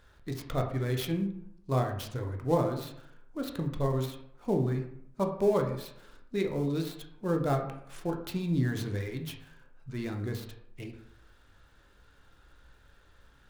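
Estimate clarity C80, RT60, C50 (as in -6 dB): 10.5 dB, 0.70 s, 8.0 dB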